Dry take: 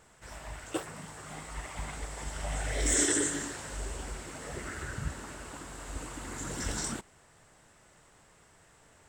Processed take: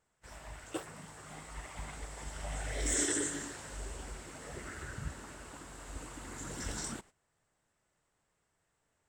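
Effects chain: gate -50 dBFS, range -14 dB; gain -5 dB

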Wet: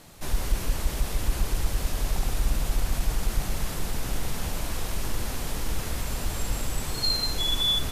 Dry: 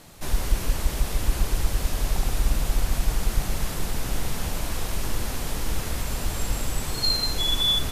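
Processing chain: in parallel at -8 dB: soft clip -17.5 dBFS, distortion -13 dB; on the sum: gain -4.5 dB

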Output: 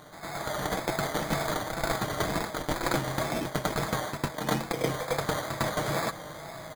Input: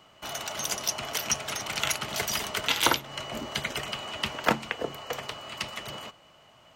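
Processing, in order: Wiener smoothing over 15 samples; resonant high shelf 4700 Hz -7.5 dB, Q 1.5; sample-and-hold 16×; comb 6.3 ms, depth 37%; reverse; compressor 12:1, threshold -43 dBFS, peak gain reduction 28 dB; reverse; wow and flutter 87 cents; on a send: reverse echo 0.104 s -7.5 dB; on the sum: AGC gain up to 8.5 dB; gain +8.5 dB

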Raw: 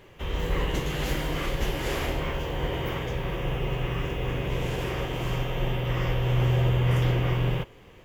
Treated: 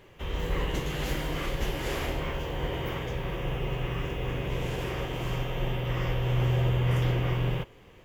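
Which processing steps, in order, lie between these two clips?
gain -2.5 dB

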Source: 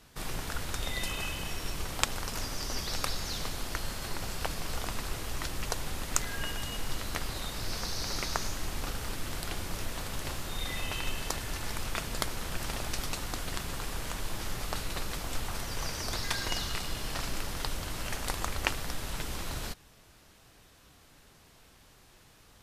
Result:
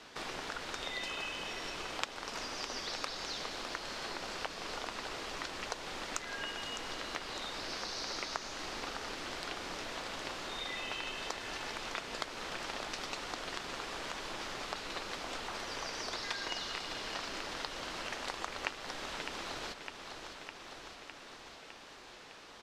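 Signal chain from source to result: three-band isolator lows -19 dB, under 250 Hz, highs -23 dB, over 6400 Hz; on a send: feedback echo 0.607 s, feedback 56%, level -12.5 dB; on the sum: compressor 2:1, threshold -53 dBFS, peak gain reduction 16.5 dB; gain +8 dB

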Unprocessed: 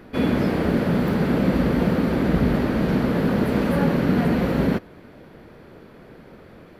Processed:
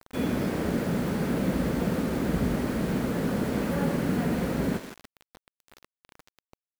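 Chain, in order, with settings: thinning echo 0.163 s, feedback 30%, high-pass 440 Hz, level -10.5 dB; bit-crush 6-bit; gain -7 dB

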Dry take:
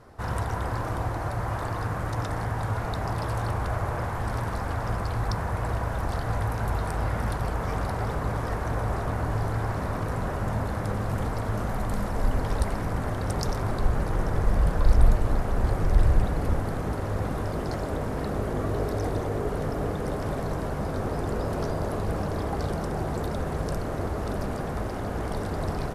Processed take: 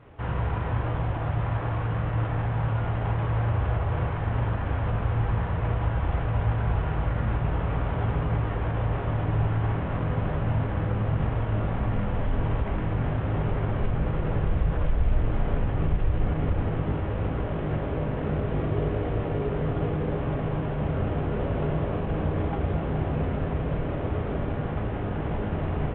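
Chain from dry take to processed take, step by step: CVSD 16 kbps; HPF 88 Hz 6 dB/oct; low shelf 190 Hz +9 dB; limiter -16.5 dBFS, peak gain reduction 10.5 dB; on a send: reverb RT60 0.45 s, pre-delay 6 ms, DRR 5 dB; on the sum: gain -3 dB

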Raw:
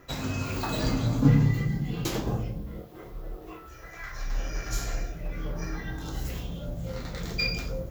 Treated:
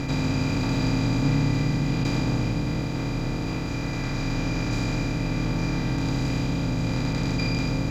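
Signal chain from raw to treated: per-bin compression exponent 0.2; air absorption 56 m; gain -6.5 dB

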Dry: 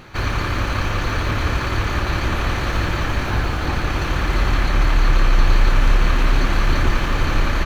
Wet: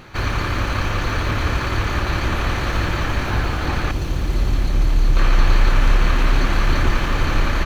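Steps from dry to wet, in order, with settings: 3.91–5.17 bell 1500 Hz -11.5 dB 2.5 oct

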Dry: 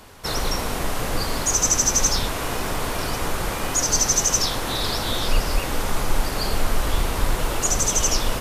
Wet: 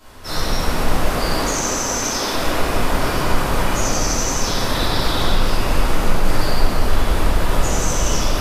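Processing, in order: 1.05–2.32 HPF 230 Hz 24 dB/oct; limiter -16 dBFS, peak gain reduction 9 dB; reverb RT60 3.5 s, pre-delay 3 ms, DRR -15.5 dB; gain -9 dB

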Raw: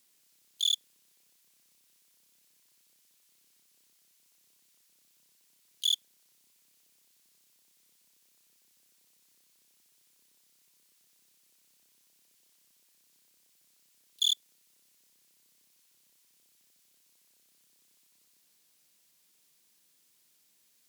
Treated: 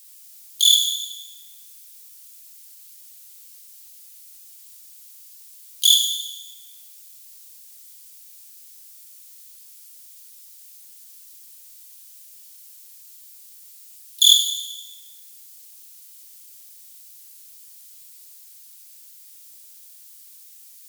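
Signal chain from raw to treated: tilt +4.5 dB/oct; plate-style reverb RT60 1.4 s, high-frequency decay 0.85×, DRR 0.5 dB; gain +3 dB

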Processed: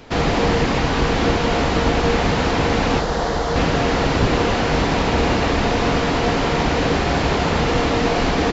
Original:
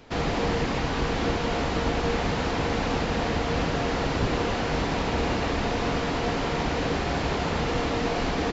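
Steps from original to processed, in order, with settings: 3–3.56 fifteen-band EQ 100 Hz -11 dB, 250 Hz -8 dB, 2500 Hz -11 dB; gain +8 dB

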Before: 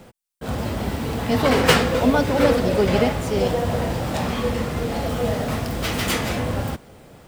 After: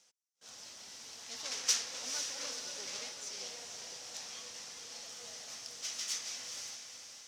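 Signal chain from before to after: self-modulated delay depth 0.24 ms; band-pass 5900 Hz, Q 4.3; on a send: diffused feedback echo 0.479 s, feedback 46%, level -6 dB

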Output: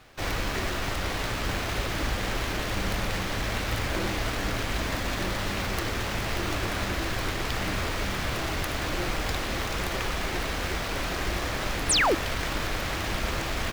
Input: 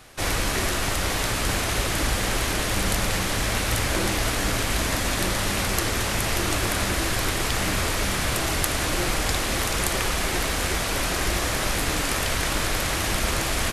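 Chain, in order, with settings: median filter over 5 samples; painted sound fall, 11.89–12.15, 270–11000 Hz -18 dBFS; gain -4 dB

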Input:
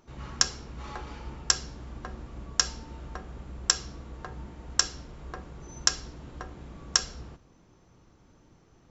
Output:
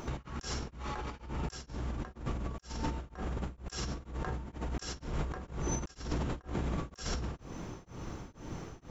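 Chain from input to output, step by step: bell 4500 Hz -3 dB 0.68 oct; negative-ratio compressor -47 dBFS, ratio -1; beating tremolo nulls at 2.1 Hz; gain +9.5 dB

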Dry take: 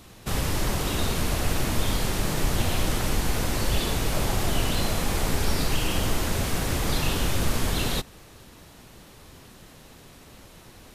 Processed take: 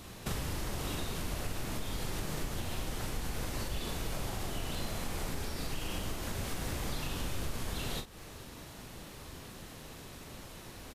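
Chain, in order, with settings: compressor 6:1, threshold -34 dBFS, peak gain reduction 16 dB; crackle 230/s -61 dBFS; doubler 40 ms -8 dB

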